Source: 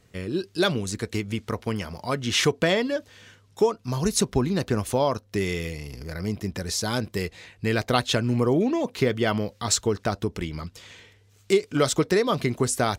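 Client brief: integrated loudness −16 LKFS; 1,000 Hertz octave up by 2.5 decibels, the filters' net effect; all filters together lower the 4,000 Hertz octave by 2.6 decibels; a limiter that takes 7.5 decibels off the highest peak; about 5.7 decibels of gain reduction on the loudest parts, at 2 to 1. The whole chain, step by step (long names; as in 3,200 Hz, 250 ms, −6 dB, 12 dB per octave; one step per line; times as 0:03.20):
parametric band 1,000 Hz +3.5 dB
parametric band 4,000 Hz −3.5 dB
downward compressor 2 to 1, threshold −26 dBFS
level +14.5 dB
brickwall limiter −4 dBFS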